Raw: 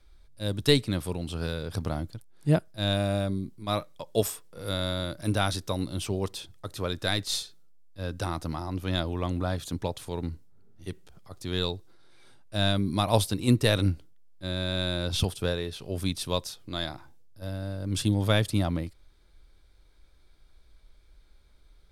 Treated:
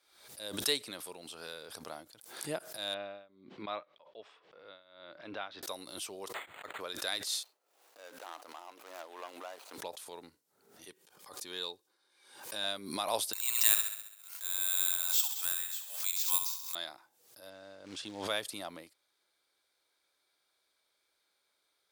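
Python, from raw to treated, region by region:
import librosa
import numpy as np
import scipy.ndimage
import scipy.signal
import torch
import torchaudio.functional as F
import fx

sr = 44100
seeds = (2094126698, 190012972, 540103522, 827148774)

y = fx.chain(x, sr, fx.lowpass(hz=3200.0, slope=24),
    fx.tremolo(hz=1.3, depth=0.94), at=(2.94, 5.63))
y = fx.chain(y, sr, fx.high_shelf(hz=2200.0, db=10.0),
    fx.resample_linear(factor=8), at=(6.34, 6.81))
y = fx.chain(y, sr, fx.median_filter(points=25),
    fx.highpass(hz=530.0, slope=12),
    fx.sustainer(db_per_s=120.0), at=(7.43, 9.78))
y = fx.chain(y, sr, fx.notch_comb(f0_hz=670.0),
    fx.pre_swell(db_per_s=110.0), at=(10.88, 12.64))
y = fx.chain(y, sr, fx.ellip_bandpass(low_hz=910.0, high_hz=6700.0, order=3, stop_db=60),
    fx.echo_feedback(ms=67, feedback_pct=58, wet_db=-8.0),
    fx.resample_bad(factor=4, down='none', up='zero_stuff'), at=(13.33, 16.75))
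y = fx.chain(y, sr, fx.quant_companded(bits=6),
    fx.air_absorb(metres=110.0), at=(17.5, 18.28))
y = scipy.signal.sosfilt(scipy.signal.butter(2, 540.0, 'highpass', fs=sr, output='sos'), y)
y = fx.high_shelf(y, sr, hz=5800.0, db=7.0)
y = fx.pre_swell(y, sr, db_per_s=76.0)
y = y * librosa.db_to_amplitude(-8.0)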